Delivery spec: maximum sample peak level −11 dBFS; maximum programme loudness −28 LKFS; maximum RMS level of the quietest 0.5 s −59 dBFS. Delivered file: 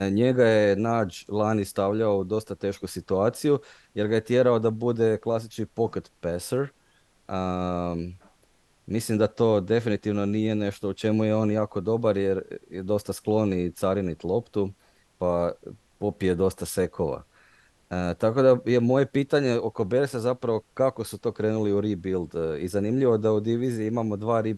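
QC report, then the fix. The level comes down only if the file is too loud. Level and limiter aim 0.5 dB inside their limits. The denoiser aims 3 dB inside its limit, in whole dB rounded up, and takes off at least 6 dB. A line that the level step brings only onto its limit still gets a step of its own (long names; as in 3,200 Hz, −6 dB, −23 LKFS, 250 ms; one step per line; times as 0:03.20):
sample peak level −7.5 dBFS: out of spec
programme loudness −25.5 LKFS: out of spec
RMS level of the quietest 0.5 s −63 dBFS: in spec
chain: level −3 dB
brickwall limiter −11.5 dBFS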